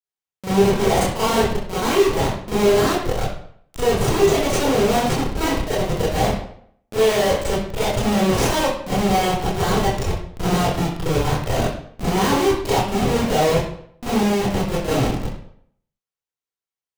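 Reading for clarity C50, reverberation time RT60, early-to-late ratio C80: -1.5 dB, 0.65 s, 5.0 dB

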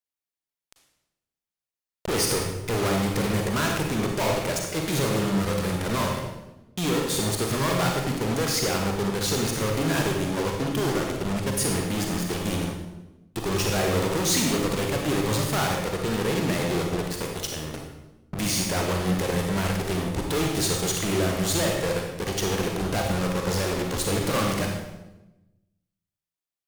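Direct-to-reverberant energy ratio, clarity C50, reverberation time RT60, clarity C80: 1.0 dB, 2.5 dB, 1.0 s, 5.0 dB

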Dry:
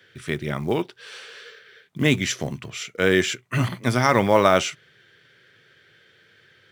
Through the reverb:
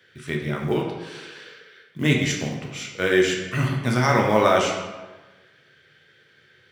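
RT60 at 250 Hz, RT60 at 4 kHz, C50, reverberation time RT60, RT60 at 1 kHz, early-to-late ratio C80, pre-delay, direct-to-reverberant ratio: 1.3 s, 0.80 s, 4.0 dB, 1.2 s, 1.2 s, 6.0 dB, 10 ms, -0.5 dB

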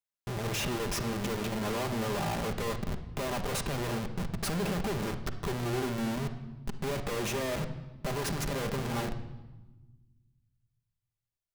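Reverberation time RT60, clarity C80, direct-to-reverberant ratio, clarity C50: 1.1 s, 13.0 dB, 5.5 dB, 10.0 dB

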